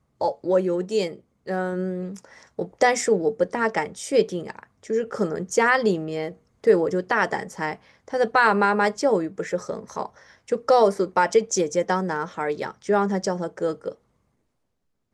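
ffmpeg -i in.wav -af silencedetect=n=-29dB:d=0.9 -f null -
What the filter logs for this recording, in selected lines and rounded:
silence_start: 13.92
silence_end: 15.13 | silence_duration: 1.22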